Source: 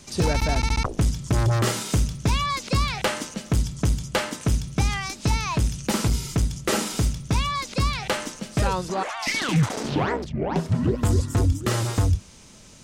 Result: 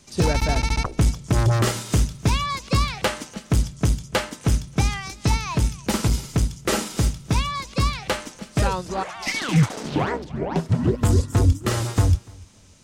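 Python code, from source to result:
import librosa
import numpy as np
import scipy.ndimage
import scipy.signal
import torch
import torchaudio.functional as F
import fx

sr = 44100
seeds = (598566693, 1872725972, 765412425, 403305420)

y = fx.echo_feedback(x, sr, ms=292, feedback_pct=23, wet_db=-17.0)
y = fx.upward_expand(y, sr, threshold_db=-35.0, expansion=1.5)
y = y * librosa.db_to_amplitude(4.0)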